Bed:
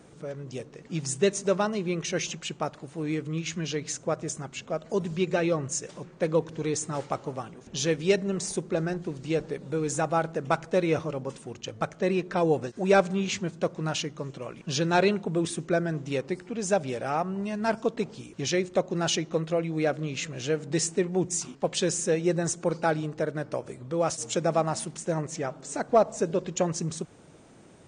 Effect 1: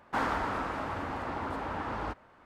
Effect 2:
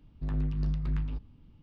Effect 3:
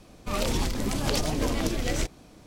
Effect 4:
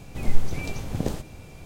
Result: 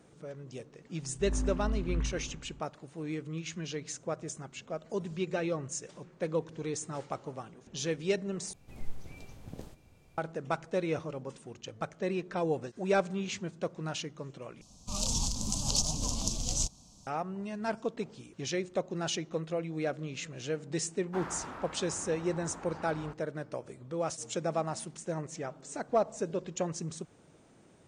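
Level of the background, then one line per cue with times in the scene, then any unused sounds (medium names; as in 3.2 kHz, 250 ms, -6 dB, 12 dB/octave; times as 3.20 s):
bed -7 dB
0.98 s: add 2 -9.5 dB + spring tank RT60 1.3 s, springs 55 ms, chirp 30 ms, DRR -9.5 dB
8.53 s: replace with 4 -17.5 dB
14.61 s: replace with 3 -5.5 dB + FFT filter 210 Hz 0 dB, 360 Hz -15 dB, 1 kHz -1 dB, 1.9 kHz -28 dB, 2.7 kHz -6 dB, 6.6 kHz +14 dB, 15 kHz -11 dB
21.00 s: add 1 -11 dB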